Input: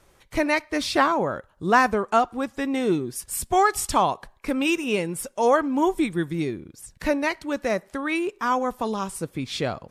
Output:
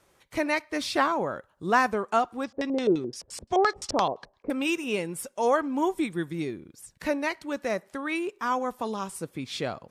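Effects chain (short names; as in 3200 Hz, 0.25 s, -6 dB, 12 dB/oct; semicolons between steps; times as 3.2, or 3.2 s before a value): HPF 130 Hz 6 dB/oct; 2.44–4.5 LFO low-pass square 5.8 Hz 530–5100 Hz; gain -4 dB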